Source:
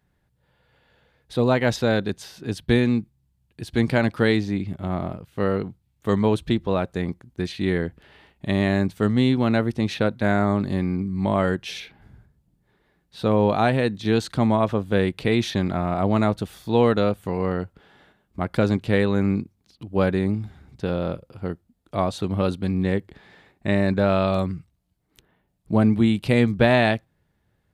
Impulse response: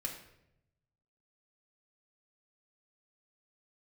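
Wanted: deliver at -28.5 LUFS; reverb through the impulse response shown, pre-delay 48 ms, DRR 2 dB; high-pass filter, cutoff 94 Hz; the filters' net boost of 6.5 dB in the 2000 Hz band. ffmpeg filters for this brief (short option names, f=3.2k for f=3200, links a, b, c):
-filter_complex "[0:a]highpass=94,equalizer=f=2k:t=o:g=8,asplit=2[a][b];[1:a]atrim=start_sample=2205,adelay=48[c];[b][c]afir=irnorm=-1:irlink=0,volume=-2.5dB[d];[a][d]amix=inputs=2:normalize=0,volume=-8.5dB"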